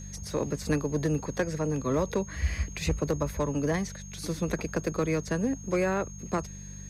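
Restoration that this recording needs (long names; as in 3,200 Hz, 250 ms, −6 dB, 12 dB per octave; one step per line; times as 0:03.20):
clipped peaks rebuilt −18.5 dBFS
hum removal 49 Hz, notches 4
notch filter 6,500 Hz, Q 30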